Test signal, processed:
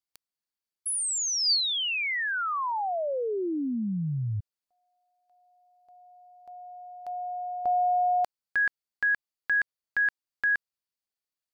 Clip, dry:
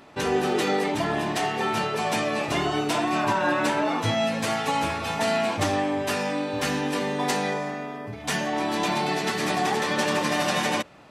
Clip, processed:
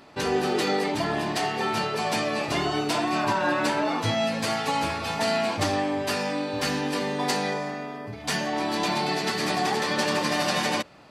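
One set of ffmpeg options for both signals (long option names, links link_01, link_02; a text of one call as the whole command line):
ffmpeg -i in.wav -af "equalizer=frequency=4600:width=5.7:gain=7.5,volume=-1dB" out.wav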